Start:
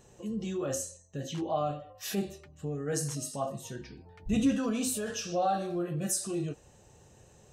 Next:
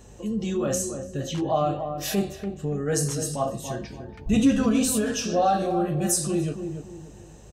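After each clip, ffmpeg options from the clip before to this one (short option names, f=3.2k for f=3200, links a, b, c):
-filter_complex "[0:a]asplit=2[a][b];[b]adelay=288,lowpass=f=900:p=1,volume=-6.5dB,asplit=2[c][d];[d]adelay=288,lowpass=f=900:p=1,volume=0.36,asplit=2[e][f];[f]adelay=288,lowpass=f=900:p=1,volume=0.36,asplit=2[g][h];[h]adelay=288,lowpass=f=900:p=1,volume=0.36[i];[a][c][e][g][i]amix=inputs=5:normalize=0,aeval=exprs='val(0)+0.00158*(sin(2*PI*50*n/s)+sin(2*PI*2*50*n/s)/2+sin(2*PI*3*50*n/s)/3+sin(2*PI*4*50*n/s)/4+sin(2*PI*5*50*n/s)/5)':c=same,volume=7dB"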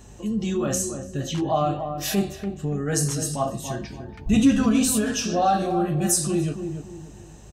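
-af "equalizer=f=500:t=o:w=0.42:g=-7,volume=2.5dB"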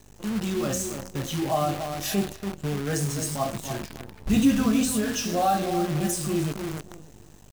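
-filter_complex "[0:a]acrossover=split=3400[a][b];[b]alimiter=limit=-17.5dB:level=0:latency=1:release=273[c];[a][c]amix=inputs=2:normalize=0,acrusher=bits=6:dc=4:mix=0:aa=0.000001,volume=-2.5dB"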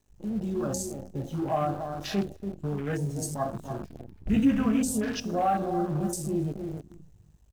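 -af "afwtdn=0.0178,volume=-2.5dB"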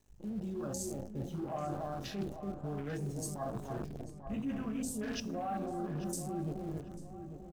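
-filter_complex "[0:a]areverse,acompressor=threshold=-36dB:ratio=6,areverse,asplit=2[a][b];[b]adelay=842,lowpass=f=1.8k:p=1,volume=-9dB,asplit=2[c][d];[d]adelay=842,lowpass=f=1.8k:p=1,volume=0.4,asplit=2[e][f];[f]adelay=842,lowpass=f=1.8k:p=1,volume=0.4,asplit=2[g][h];[h]adelay=842,lowpass=f=1.8k:p=1,volume=0.4[i];[a][c][e][g][i]amix=inputs=5:normalize=0"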